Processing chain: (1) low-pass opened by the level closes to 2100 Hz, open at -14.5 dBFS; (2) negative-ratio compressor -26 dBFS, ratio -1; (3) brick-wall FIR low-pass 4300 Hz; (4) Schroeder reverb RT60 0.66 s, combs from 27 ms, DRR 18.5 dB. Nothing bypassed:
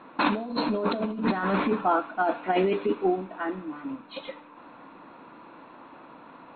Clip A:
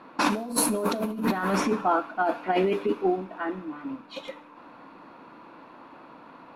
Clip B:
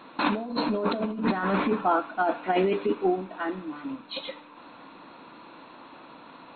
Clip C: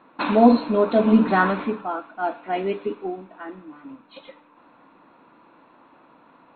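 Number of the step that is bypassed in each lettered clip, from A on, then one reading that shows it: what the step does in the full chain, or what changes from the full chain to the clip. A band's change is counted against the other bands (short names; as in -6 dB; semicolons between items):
3, 4 kHz band +1.5 dB; 1, momentary loudness spread change +9 LU; 2, crest factor change +3.0 dB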